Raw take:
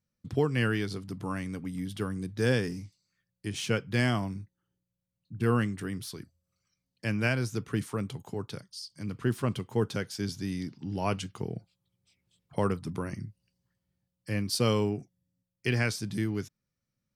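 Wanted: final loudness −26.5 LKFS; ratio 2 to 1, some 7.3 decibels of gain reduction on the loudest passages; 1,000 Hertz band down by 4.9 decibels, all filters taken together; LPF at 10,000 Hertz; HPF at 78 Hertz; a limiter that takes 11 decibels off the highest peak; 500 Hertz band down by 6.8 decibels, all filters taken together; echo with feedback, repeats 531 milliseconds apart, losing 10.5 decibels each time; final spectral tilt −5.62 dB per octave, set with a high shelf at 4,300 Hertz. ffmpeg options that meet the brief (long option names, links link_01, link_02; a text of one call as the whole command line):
ffmpeg -i in.wav -af "highpass=78,lowpass=10000,equalizer=frequency=500:width_type=o:gain=-7.5,equalizer=frequency=1000:width_type=o:gain=-4,highshelf=frequency=4300:gain=-5,acompressor=threshold=-38dB:ratio=2,alimiter=level_in=8dB:limit=-24dB:level=0:latency=1,volume=-8dB,aecho=1:1:531|1062|1593:0.299|0.0896|0.0269,volume=16dB" out.wav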